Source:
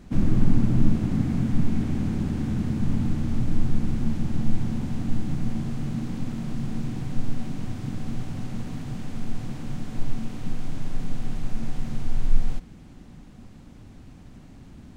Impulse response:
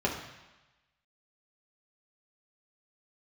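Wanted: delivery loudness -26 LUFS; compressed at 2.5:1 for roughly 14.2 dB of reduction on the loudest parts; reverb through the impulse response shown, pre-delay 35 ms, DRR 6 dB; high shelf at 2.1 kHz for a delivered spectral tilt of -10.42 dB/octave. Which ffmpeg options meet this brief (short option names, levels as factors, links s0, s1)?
-filter_complex "[0:a]highshelf=f=2100:g=-7,acompressor=threshold=0.0251:ratio=2.5,asplit=2[s0][s1];[1:a]atrim=start_sample=2205,adelay=35[s2];[s1][s2]afir=irnorm=-1:irlink=0,volume=0.168[s3];[s0][s3]amix=inputs=2:normalize=0,volume=3.16"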